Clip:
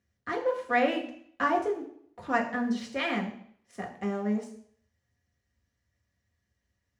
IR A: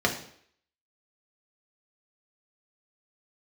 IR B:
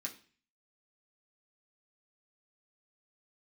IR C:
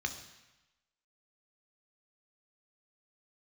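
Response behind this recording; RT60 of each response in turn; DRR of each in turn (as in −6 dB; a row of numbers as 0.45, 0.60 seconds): A; 0.60, 0.40, 1.0 seconds; 0.0, −2.0, 5.0 decibels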